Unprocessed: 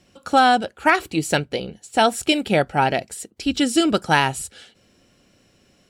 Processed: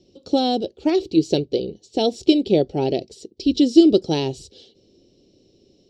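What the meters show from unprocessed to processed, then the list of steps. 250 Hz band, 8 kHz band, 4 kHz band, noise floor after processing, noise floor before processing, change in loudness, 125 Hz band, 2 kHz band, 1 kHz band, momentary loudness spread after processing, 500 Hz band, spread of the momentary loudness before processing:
+5.0 dB, below −10 dB, −3.0 dB, −59 dBFS, −59 dBFS, 0.0 dB, −1.0 dB, −19.0 dB, −11.0 dB, 12 LU, +2.5 dB, 11 LU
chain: drawn EQ curve 220 Hz 0 dB, 380 Hz +11 dB, 1,500 Hz −28 dB, 3,800 Hz +2 dB, 5,500 Hz +1 dB, 9,900 Hz −26 dB
level −1 dB

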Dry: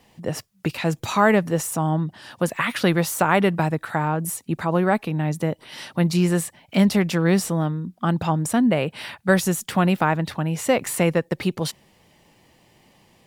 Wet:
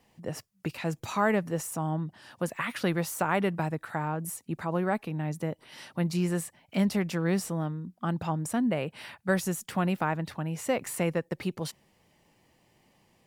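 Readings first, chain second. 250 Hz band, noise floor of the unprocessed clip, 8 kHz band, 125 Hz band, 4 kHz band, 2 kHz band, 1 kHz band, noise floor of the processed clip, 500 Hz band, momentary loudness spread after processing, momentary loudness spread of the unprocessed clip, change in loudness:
−8.5 dB, −59 dBFS, −8.5 dB, −8.5 dB, −10.0 dB, −9.0 dB, −8.5 dB, −67 dBFS, −8.5 dB, 9 LU, 9 LU, −8.5 dB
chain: parametric band 3,600 Hz −3 dB 0.57 octaves
level −8.5 dB

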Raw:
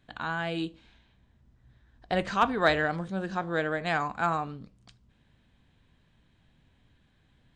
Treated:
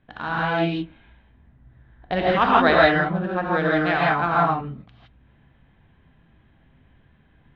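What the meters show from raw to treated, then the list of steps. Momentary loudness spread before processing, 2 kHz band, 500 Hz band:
10 LU, +8.5 dB, +9.0 dB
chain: adaptive Wiener filter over 9 samples
low-pass filter 4,200 Hz 24 dB per octave
reverb whose tail is shaped and stops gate 190 ms rising, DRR −4.5 dB
level +3.5 dB

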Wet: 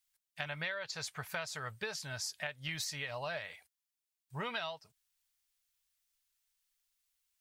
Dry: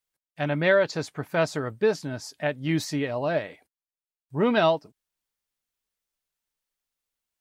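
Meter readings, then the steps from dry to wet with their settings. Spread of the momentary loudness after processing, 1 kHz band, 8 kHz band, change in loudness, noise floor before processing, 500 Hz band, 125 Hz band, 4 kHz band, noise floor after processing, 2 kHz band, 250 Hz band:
9 LU, −13.5 dB, −1.5 dB, −13.5 dB, below −85 dBFS, −20.5 dB, −15.0 dB, −5.0 dB, below −85 dBFS, −9.5 dB, −23.0 dB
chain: guitar amp tone stack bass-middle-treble 10-0-10
downward compressor 10 to 1, threshold −41 dBFS, peak gain reduction 16 dB
level +5.5 dB

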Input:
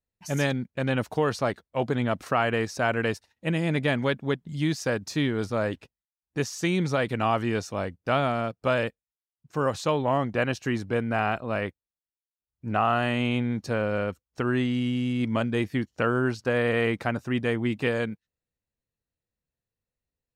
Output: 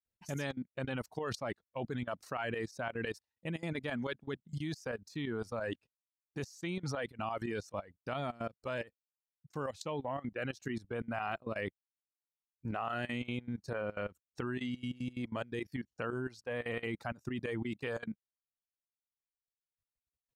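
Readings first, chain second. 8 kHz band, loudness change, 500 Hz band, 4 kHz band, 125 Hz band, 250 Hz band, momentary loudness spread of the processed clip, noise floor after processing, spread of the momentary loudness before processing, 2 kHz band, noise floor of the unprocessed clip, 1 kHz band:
−12.5 dB, −12.5 dB, −12.5 dB, −12.0 dB, −13.0 dB, −12.5 dB, 5 LU, below −85 dBFS, 6 LU, −11.5 dB, below −85 dBFS, −13.0 dB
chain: shaped tremolo saw up 5.9 Hz, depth 65%
reverb reduction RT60 1.7 s
output level in coarse steps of 19 dB
level +1.5 dB

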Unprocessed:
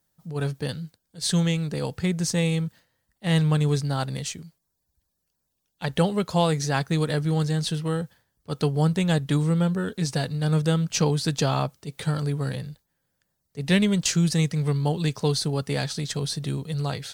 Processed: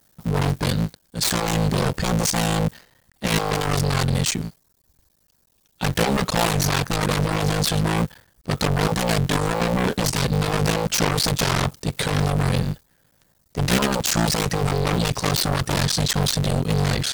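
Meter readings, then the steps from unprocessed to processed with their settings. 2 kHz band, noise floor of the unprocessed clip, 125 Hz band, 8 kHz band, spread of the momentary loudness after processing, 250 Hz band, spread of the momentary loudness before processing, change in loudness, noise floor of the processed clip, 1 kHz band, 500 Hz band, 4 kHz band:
+7.5 dB, −78 dBFS, +1.5 dB, +7.0 dB, 6 LU, +1.0 dB, 10 LU, +3.0 dB, −64 dBFS, +7.5 dB, +3.0 dB, +6.5 dB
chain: sub-harmonics by changed cycles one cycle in 3, muted
in parallel at −9 dB: sine wavefolder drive 19 dB, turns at −9.5 dBFS

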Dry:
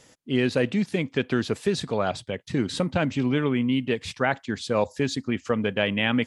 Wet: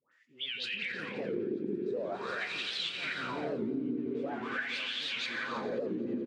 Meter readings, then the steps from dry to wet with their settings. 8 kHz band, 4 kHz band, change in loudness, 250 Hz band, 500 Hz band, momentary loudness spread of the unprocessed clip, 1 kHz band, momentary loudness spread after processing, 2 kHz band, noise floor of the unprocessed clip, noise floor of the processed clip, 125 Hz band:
−14.0 dB, −3.5 dB, −9.0 dB, −12.0 dB, −10.5 dB, 5 LU, −9.5 dB, 3 LU, −6.0 dB, −57 dBFS, −64 dBFS, −20.0 dB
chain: spectral magnitudes quantised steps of 15 dB
brickwall limiter −20.5 dBFS, peak gain reduction 11 dB
all-pass dispersion highs, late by 119 ms, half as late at 1,100 Hz
automatic gain control gain up to 13.5 dB
high-shelf EQ 7,200 Hz −6 dB
on a send: echo that builds up and dies away 87 ms, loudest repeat 5, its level −8 dB
on the sum: LFO wah 0.45 Hz 310–3,200 Hz, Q 5
parametric band 700 Hz −8.5 dB 0.91 octaves
double-tracking delay 26 ms −11 dB
single-tap delay 311 ms −16 dB
downward compressor 6 to 1, threshold −32 dBFS, peak gain reduction 13.5 dB
wow of a warped record 78 rpm, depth 160 cents

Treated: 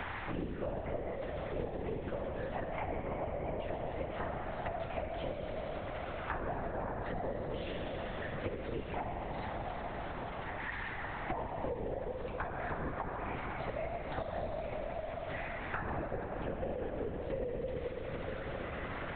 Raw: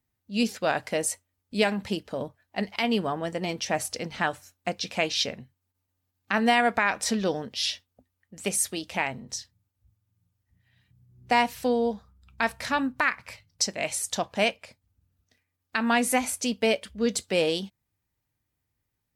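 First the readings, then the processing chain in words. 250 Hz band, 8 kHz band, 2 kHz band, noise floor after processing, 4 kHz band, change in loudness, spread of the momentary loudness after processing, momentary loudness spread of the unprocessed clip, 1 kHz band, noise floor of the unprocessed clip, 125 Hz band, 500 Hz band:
−13.0 dB, below −40 dB, −13.5 dB, −42 dBFS, −21.5 dB, −12.5 dB, 2 LU, 11 LU, −10.0 dB, −81 dBFS, −1.0 dB, −7.5 dB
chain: spike at every zero crossing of −24 dBFS
low-pass filter 1,500 Hz 12 dB per octave
treble cut that deepens with the level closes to 560 Hz, closed at −23 dBFS
high-pass filter 430 Hz 12 dB per octave
spectral tilt −1.5 dB per octave
downward compressor 2.5 to 1, threshold −46 dBFS, peak gain reduction 15.5 dB
dense smooth reverb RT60 4.7 s, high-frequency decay 0.55×, DRR −1.5 dB
linear-prediction vocoder at 8 kHz whisper
multiband upward and downward compressor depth 100%
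level +2.5 dB

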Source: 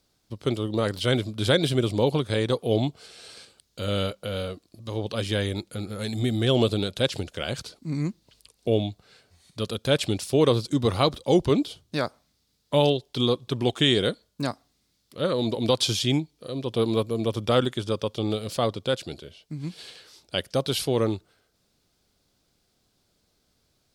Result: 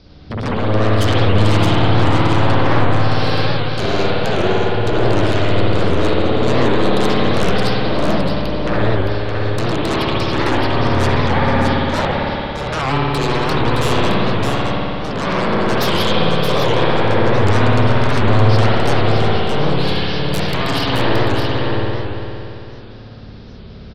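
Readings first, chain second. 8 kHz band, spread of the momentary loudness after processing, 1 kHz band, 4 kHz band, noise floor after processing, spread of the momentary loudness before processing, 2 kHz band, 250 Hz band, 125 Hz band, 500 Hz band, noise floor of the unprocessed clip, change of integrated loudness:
+3.5 dB, 7 LU, +15.5 dB, +6.0 dB, −34 dBFS, 13 LU, +14.5 dB, +8.5 dB, +12.0 dB, +7.5 dB, −71 dBFS, +9.0 dB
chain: elliptic low-pass filter 5,200 Hz
low-shelf EQ 400 Hz +11 dB
downward compressor 6 to 1, threshold −31 dBFS, peak gain reduction 20 dB
sine wavefolder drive 18 dB, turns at −17 dBFS
single-tap delay 617 ms −5.5 dB
spring reverb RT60 3.1 s, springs 56 ms, chirp 40 ms, DRR −7.5 dB
wow of a warped record 78 rpm, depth 160 cents
level −3.5 dB

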